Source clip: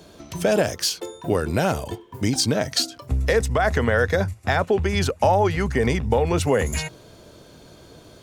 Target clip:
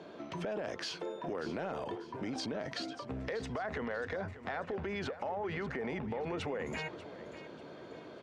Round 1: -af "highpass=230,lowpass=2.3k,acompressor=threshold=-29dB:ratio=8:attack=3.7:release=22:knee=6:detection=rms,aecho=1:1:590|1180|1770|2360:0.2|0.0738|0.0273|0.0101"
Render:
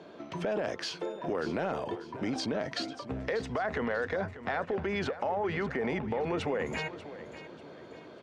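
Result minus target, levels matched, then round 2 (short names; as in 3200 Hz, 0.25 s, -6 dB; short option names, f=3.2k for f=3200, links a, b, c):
compressor: peak gain reduction -6 dB
-af "highpass=230,lowpass=2.3k,acompressor=threshold=-36dB:ratio=8:attack=3.7:release=22:knee=6:detection=rms,aecho=1:1:590|1180|1770|2360:0.2|0.0738|0.0273|0.0101"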